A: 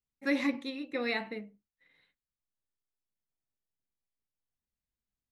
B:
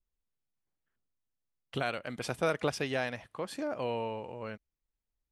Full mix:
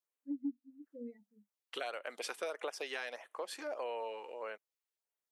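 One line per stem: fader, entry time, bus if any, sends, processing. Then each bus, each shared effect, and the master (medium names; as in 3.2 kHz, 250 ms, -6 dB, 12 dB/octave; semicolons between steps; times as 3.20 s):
-2.5 dB, 0.00 s, no send, bass shelf 240 Hz +11 dB; level rider gain up to 6.5 dB; spectral contrast expander 4:1; auto duck -6 dB, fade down 1.00 s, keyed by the second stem
+0.5 dB, 0.00 s, no send, high-pass 430 Hz 24 dB/octave; LFO notch sine 1.6 Hz 580–5100 Hz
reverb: none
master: compression 6:1, threshold -36 dBFS, peak gain reduction 16.5 dB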